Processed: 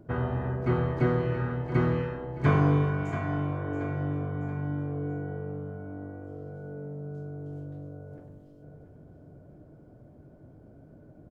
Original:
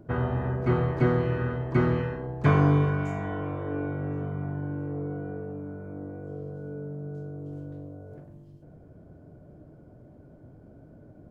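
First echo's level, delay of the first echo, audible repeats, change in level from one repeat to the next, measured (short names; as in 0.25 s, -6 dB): -11.0 dB, 0.679 s, 3, -6.5 dB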